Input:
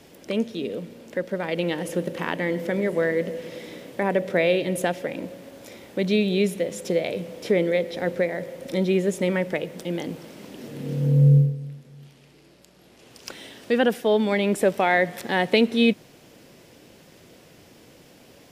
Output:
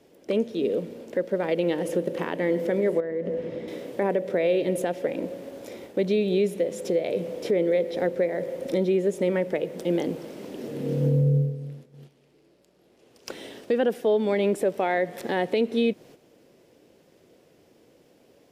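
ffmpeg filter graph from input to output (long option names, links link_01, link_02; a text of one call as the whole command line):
ffmpeg -i in.wav -filter_complex "[0:a]asettb=1/sr,asplit=3[link_01][link_02][link_03];[link_01]atrim=end=3.004[link_04];[link_02]atrim=start=3:end=3.68,asetpts=PTS-STARTPTS,afade=type=in:duration=0.004:curve=qsin,afade=type=out:start_time=0.676:duration=0.004:curve=qsin,lowpass=frequency=1500:poles=1,acompressor=threshold=-28dB:ratio=4:attack=3.2:release=140:knee=1:detection=peak,asubboost=boost=8.5:cutoff=250[link_05];[link_03]atrim=start=3.676[link_06];[link_04][link_05]acrossfade=duration=0.004:curve1=hsin:curve2=qsin[link_07];[link_07][link_06]acrossfade=duration=0.004:curve1=qsin:curve2=hsin,agate=range=-10dB:threshold=-45dB:ratio=16:detection=peak,equalizer=frequency=430:width=0.85:gain=9,alimiter=limit=-12dB:level=0:latency=1:release=308,volume=-2.5dB" out.wav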